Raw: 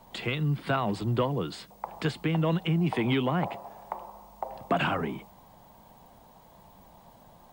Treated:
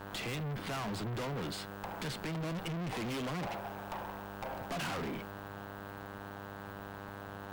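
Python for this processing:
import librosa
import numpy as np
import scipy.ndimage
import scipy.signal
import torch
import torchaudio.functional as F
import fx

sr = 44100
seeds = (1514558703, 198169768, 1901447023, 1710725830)

y = fx.dmg_buzz(x, sr, base_hz=100.0, harmonics=16, level_db=-46.0, tilt_db=-1, odd_only=False)
y = fx.tube_stage(y, sr, drive_db=41.0, bias=0.75)
y = y * librosa.db_to_amplitude(5.0)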